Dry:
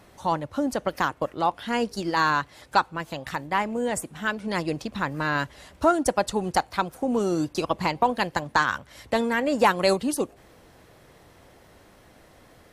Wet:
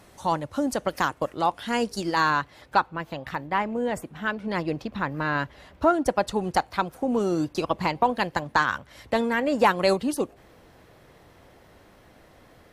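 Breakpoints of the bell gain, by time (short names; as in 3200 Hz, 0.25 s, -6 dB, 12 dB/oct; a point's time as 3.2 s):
bell 8700 Hz 1.5 oct
2.07 s +4 dB
2.28 s -3 dB
2.83 s -13 dB
5.9 s -13 dB
6.35 s -5 dB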